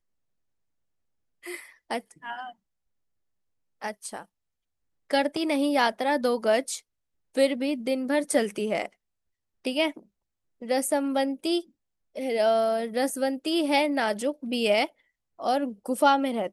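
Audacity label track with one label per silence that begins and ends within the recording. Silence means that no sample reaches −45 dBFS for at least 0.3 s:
2.520000	3.810000	silence
4.240000	5.100000	silence
6.800000	7.350000	silence
8.870000	9.650000	silence
10.000000	10.620000	silence
11.620000	12.160000	silence
14.890000	15.390000	silence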